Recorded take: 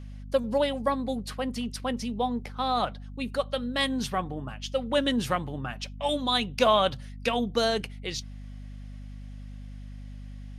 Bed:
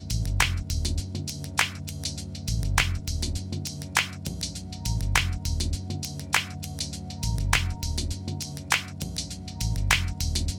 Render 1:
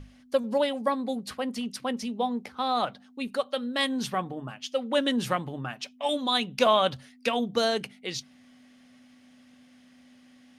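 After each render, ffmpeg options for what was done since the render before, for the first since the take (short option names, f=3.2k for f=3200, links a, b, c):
-af "bandreject=f=50:t=h:w=6,bandreject=f=100:t=h:w=6,bandreject=f=150:t=h:w=6,bandreject=f=200:t=h:w=6"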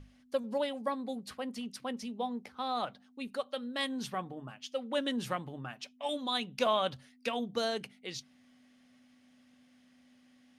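-af "volume=-7.5dB"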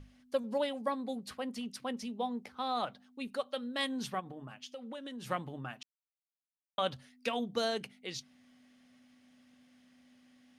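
-filter_complex "[0:a]asplit=3[a][b][c];[a]afade=t=out:st=4.19:d=0.02[d];[b]acompressor=threshold=-41dB:ratio=6:attack=3.2:release=140:knee=1:detection=peak,afade=t=in:st=4.19:d=0.02,afade=t=out:st=5.29:d=0.02[e];[c]afade=t=in:st=5.29:d=0.02[f];[d][e][f]amix=inputs=3:normalize=0,asplit=3[g][h][i];[g]atrim=end=5.83,asetpts=PTS-STARTPTS,afade=t=out:st=5.826:d=0.004:c=hsin[j];[h]atrim=start=5.83:end=6.78,asetpts=PTS-STARTPTS,volume=0[k];[i]atrim=start=6.78,asetpts=PTS-STARTPTS,afade=t=in:d=0.004:c=hsin[l];[j][k][l]concat=n=3:v=0:a=1"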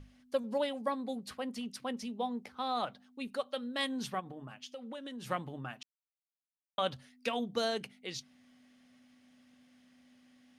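-af anull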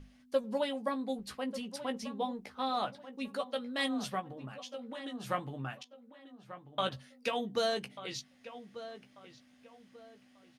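-filter_complex "[0:a]asplit=2[a][b];[b]adelay=15,volume=-6.5dB[c];[a][c]amix=inputs=2:normalize=0,asplit=2[d][e];[e]adelay=1190,lowpass=f=2.4k:p=1,volume=-13dB,asplit=2[f][g];[g]adelay=1190,lowpass=f=2.4k:p=1,volume=0.32,asplit=2[h][i];[i]adelay=1190,lowpass=f=2.4k:p=1,volume=0.32[j];[d][f][h][j]amix=inputs=4:normalize=0"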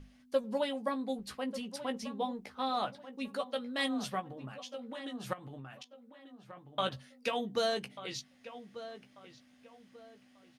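-filter_complex "[0:a]asettb=1/sr,asplit=3[a][b][c];[a]atrim=end=5.334[d];[b]atrim=start=5.33:end=6.74,asetpts=PTS-STARTPTS,afade=t=in:d=0.004:c=qsin,afade=t=out:st=1.406:d=0.004:c=qsin,acompressor=threshold=-42dB:ratio=16:attack=3.2:release=140:knee=1:detection=peak[e];[c]atrim=start=6.736[f];[d][e]acrossfade=d=0.004:c1=hsin:c2=qsin[g];[g][f]acrossfade=d=0.004:c1=qsin:c2=hsin"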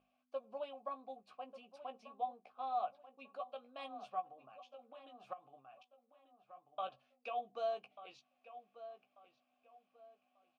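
-filter_complex "[0:a]asplit=3[a][b][c];[a]bandpass=f=730:t=q:w=8,volume=0dB[d];[b]bandpass=f=1.09k:t=q:w=8,volume=-6dB[e];[c]bandpass=f=2.44k:t=q:w=8,volume=-9dB[f];[d][e][f]amix=inputs=3:normalize=0"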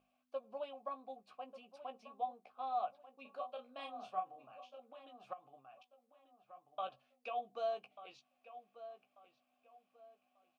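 -filter_complex "[0:a]asettb=1/sr,asplit=3[a][b][c];[a]atrim=end=3.224[d];[b]atrim=start=3.22:end=4.8,asetpts=PTS-STARTPTS,afade=t=in:d=0.004:c=qsin,afade=t=out:st=1.576:d=0.004:c=qsin,asplit=2[e][f];[f]adelay=32,volume=-5.5dB[g];[e][g]amix=inputs=2:normalize=0,atrim=end_sample=69678[h];[c]atrim=start=4.796[i];[d][h]acrossfade=d=0.004:c1=hsin:c2=qsin[j];[j][i]acrossfade=d=0.004:c1=qsin:c2=hsin"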